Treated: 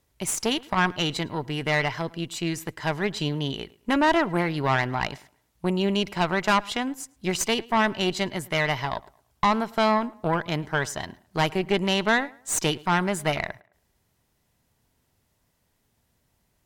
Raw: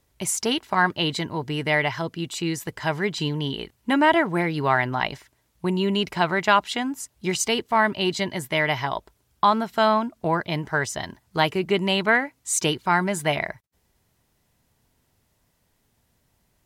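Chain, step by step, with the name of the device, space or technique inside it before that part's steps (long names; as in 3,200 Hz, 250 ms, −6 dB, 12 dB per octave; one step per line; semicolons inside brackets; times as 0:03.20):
rockabilly slapback (tube saturation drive 15 dB, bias 0.75; tape delay 108 ms, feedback 31%, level −21 dB, low-pass 2,900 Hz)
level +2 dB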